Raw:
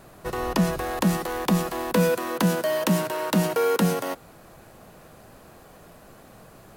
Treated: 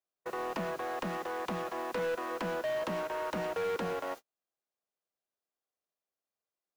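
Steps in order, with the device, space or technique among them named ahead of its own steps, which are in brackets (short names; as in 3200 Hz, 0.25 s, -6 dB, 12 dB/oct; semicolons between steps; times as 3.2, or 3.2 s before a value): aircraft radio (BPF 370–2400 Hz; hard clip -25 dBFS, distortion -10 dB; buzz 400 Hz, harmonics 18, -57 dBFS 0 dB/oct; white noise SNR 22 dB; gate -36 dBFS, range -43 dB); gain -5.5 dB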